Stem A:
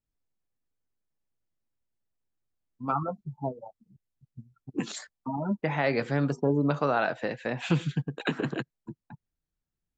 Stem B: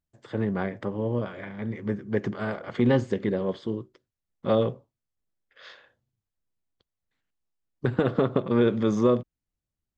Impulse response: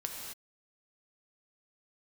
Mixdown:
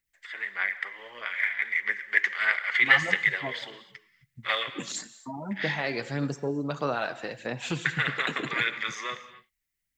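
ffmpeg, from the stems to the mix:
-filter_complex "[0:a]crystalizer=i=3.5:c=0,volume=-7.5dB,asplit=2[a][b];[b]volume=-11dB[c];[1:a]dynaudnorm=f=140:g=17:m=6.5dB,highpass=f=2k:t=q:w=6,volume=-1.5dB,asplit=2[d][e];[e]volume=-7.5dB[f];[2:a]atrim=start_sample=2205[g];[c][f]amix=inputs=2:normalize=0[h];[h][g]afir=irnorm=-1:irlink=0[i];[a][d][i]amix=inputs=3:normalize=0,aphaser=in_gain=1:out_gain=1:delay=3:decay=0.32:speed=1.6:type=sinusoidal"

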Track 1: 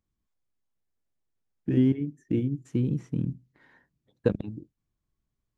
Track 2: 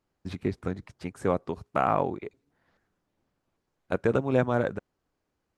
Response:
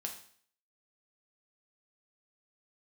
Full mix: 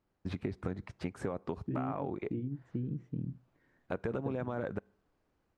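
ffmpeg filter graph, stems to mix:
-filter_complex "[0:a]lowpass=f=1.7k:p=1,equalizer=f=940:w=1.4:g=-11.5,volume=-6.5dB[a];[1:a]alimiter=limit=-21dB:level=0:latency=1:release=43,dynaudnorm=f=240:g=3:m=4dB,volume=-1.5dB,asplit=2[b][c];[c]volume=-21dB[d];[2:a]atrim=start_sample=2205[e];[d][e]afir=irnorm=-1:irlink=0[f];[a][b][f]amix=inputs=3:normalize=0,lowpass=f=2.9k:p=1,acompressor=threshold=-32dB:ratio=6"

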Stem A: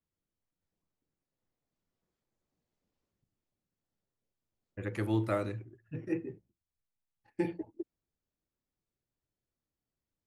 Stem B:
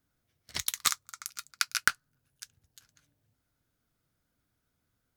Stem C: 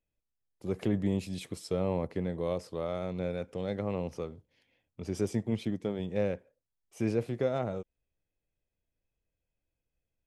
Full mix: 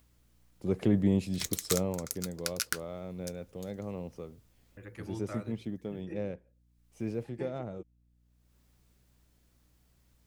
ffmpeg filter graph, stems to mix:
-filter_complex "[0:a]lowshelf=f=470:g=-10.5,acompressor=mode=upward:threshold=-42dB:ratio=2.5,aeval=exprs='val(0)+0.000501*(sin(2*PI*60*n/s)+sin(2*PI*2*60*n/s)/2+sin(2*PI*3*60*n/s)/3+sin(2*PI*4*60*n/s)/4+sin(2*PI*5*60*n/s)/5)':c=same,volume=-8.5dB[a];[1:a]alimiter=limit=-12dB:level=0:latency=1:release=75,highshelf=f=4.9k:g=11,adelay=850,volume=-6.5dB[b];[2:a]equalizer=f=65:t=o:w=2.1:g=-6.5,afade=t=out:st=1.67:d=0.3:silence=0.375837[c];[a][b][c]amix=inputs=3:normalize=0,lowshelf=f=280:g=9"

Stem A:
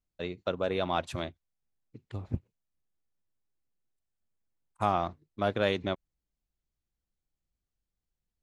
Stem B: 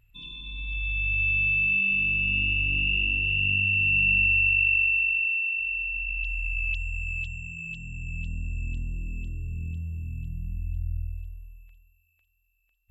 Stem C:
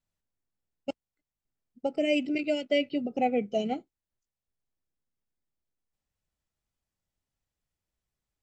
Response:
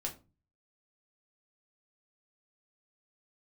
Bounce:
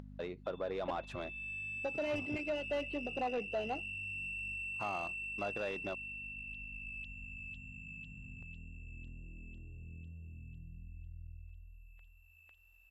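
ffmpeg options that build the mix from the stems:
-filter_complex "[0:a]acompressor=threshold=-42dB:ratio=2,volume=-2dB[a];[1:a]adelay=300,volume=-16dB,afade=t=in:st=1.17:d=0.31:silence=0.421697[b];[2:a]asplit=2[c][d];[d]highpass=f=720:p=1,volume=16dB,asoftclip=type=tanh:threshold=-14dB[e];[c][e]amix=inputs=2:normalize=0,lowpass=f=2.8k:p=1,volume=-6dB,aeval=exprs='val(0)+0.00891*(sin(2*PI*50*n/s)+sin(2*PI*2*50*n/s)/2+sin(2*PI*3*50*n/s)/3+sin(2*PI*4*50*n/s)/4+sin(2*PI*5*50*n/s)/5)':c=same,volume=-10.5dB[f];[b][f]amix=inputs=2:normalize=0,bandreject=f=2.3k:w=12,acompressor=threshold=-41dB:ratio=1.5,volume=0dB[g];[a][g]amix=inputs=2:normalize=0,asplit=2[h][i];[i]highpass=f=720:p=1,volume=16dB,asoftclip=type=tanh:threshold=-25.5dB[j];[h][j]amix=inputs=2:normalize=0,lowpass=f=1k:p=1,volume=-6dB,acompressor=mode=upward:threshold=-43dB:ratio=2.5"

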